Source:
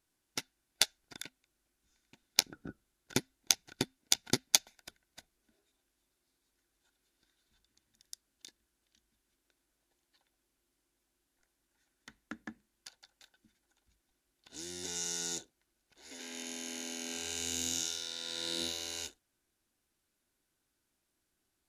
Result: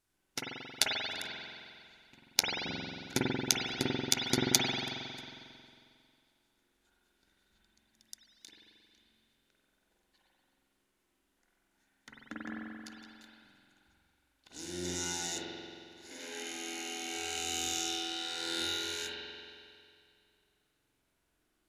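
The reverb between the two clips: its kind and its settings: spring tank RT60 2.3 s, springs 45 ms, chirp 80 ms, DRR -5.5 dB; trim -1 dB

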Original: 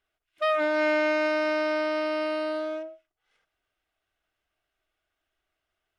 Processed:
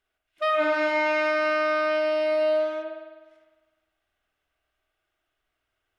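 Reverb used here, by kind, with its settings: spring tank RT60 1.3 s, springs 50 ms, chirp 75 ms, DRR 1 dB

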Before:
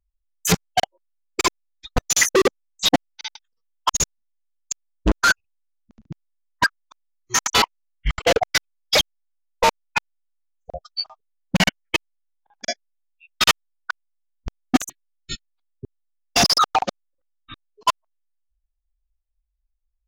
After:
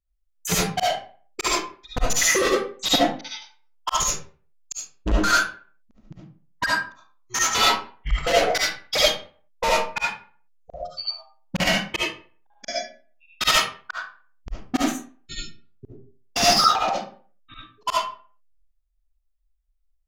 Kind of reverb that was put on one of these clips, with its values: algorithmic reverb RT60 0.43 s, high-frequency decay 0.7×, pre-delay 30 ms, DRR -6.5 dB; trim -7.5 dB

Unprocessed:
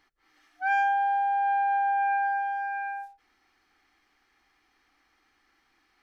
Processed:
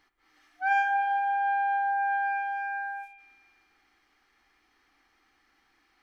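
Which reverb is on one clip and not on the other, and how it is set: spring tank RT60 2.4 s, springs 49/54 ms, chirp 30 ms, DRR 8 dB

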